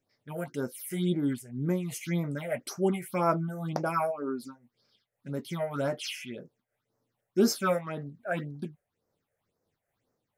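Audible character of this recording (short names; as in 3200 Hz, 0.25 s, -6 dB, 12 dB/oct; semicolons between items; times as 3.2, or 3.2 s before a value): phasing stages 6, 1.9 Hz, lowest notch 260–3200 Hz; noise-modulated level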